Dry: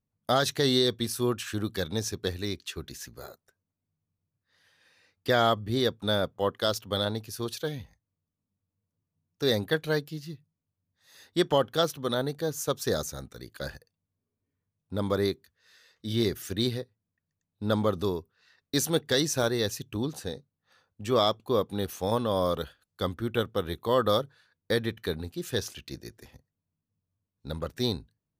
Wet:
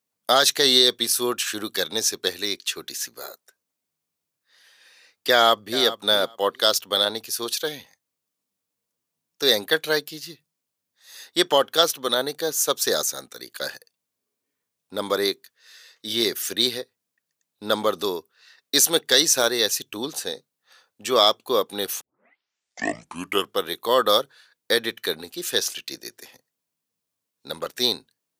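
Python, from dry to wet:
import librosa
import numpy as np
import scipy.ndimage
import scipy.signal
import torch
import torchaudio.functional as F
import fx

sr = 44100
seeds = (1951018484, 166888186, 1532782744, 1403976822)

y = fx.echo_throw(x, sr, start_s=5.31, length_s=0.52, ms=410, feedback_pct=15, wet_db=-14.5)
y = fx.edit(y, sr, fx.tape_start(start_s=22.01, length_s=1.59), tone=tone)
y = scipy.signal.sosfilt(scipy.signal.butter(2, 360.0, 'highpass', fs=sr, output='sos'), y)
y = fx.high_shelf(y, sr, hz=2100.0, db=8.5)
y = y * librosa.db_to_amplitude(5.0)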